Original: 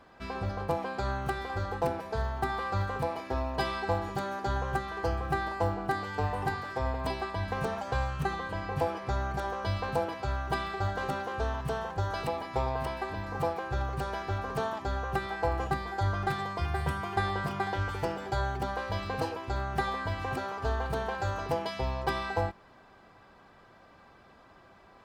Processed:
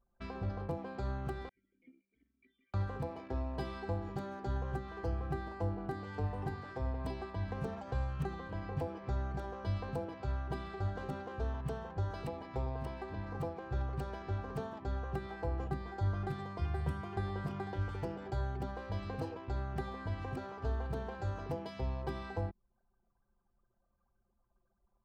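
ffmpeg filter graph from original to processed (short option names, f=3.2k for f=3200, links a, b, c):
-filter_complex "[0:a]asettb=1/sr,asplit=3[a][b][c];[a]atrim=end=1.494[d];[b]atrim=start=1.49:end=2.74,asetpts=PTS-STARTPTS,afade=t=in:d=0.004:c=qsin,afade=t=out:st=1.246:d=0.004:c=qsin,tiltshelf=f=660:g=-6,volume=31.5dB,asoftclip=hard,volume=-31.5dB,asplit=3[e][f][g];[e]bandpass=f=270:t=q:w=8,volume=0dB[h];[f]bandpass=f=2.29k:t=q:w=8,volume=-6dB[i];[g]bandpass=f=3.01k:t=q:w=8,volume=-9dB[j];[h][i][j]amix=inputs=3:normalize=0[k];[c]atrim=start=2.736[l];[d][k]acrossfade=d=0.004:c1=hsin:c2=qsin[m];[m][l]acrossfade=d=0.004:c1=qsin:c2=hsin,anlmdn=0.1,acrossover=split=440[n][o];[o]acompressor=threshold=-47dB:ratio=2.5[p];[n][p]amix=inputs=2:normalize=0,volume=-3dB"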